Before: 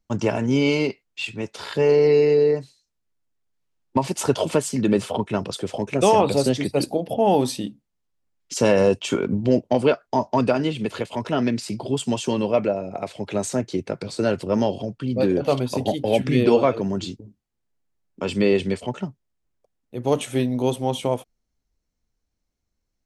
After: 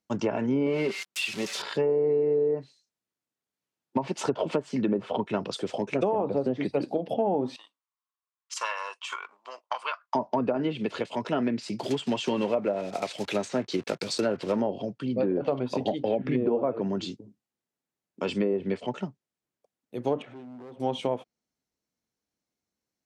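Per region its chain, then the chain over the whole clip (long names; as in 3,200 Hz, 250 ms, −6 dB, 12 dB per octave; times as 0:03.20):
0:00.66–0:01.62: spike at every zero crossing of −16 dBFS + high-shelf EQ 6,500 Hz −3.5 dB + comb filter 5.2 ms, depth 37%
0:07.56–0:10.15: transient designer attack +9 dB, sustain +3 dB + four-pole ladder high-pass 1,000 Hz, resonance 75% + dynamic equaliser 2,500 Hz, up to +6 dB, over −46 dBFS, Q 1
0:11.79–0:14.62: one scale factor per block 5 bits + high-shelf EQ 2,200 Hz +11 dB + slack as between gear wheels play −42 dBFS
0:20.22–0:20.80: low-pass filter 1,500 Hz + downward compressor 3 to 1, threshold −38 dBFS + hard clipping −37 dBFS
whole clip: treble cut that deepens with the level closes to 890 Hz, closed at −14 dBFS; high-pass filter 170 Hz 12 dB per octave; downward compressor, threshold −19 dBFS; level −2.5 dB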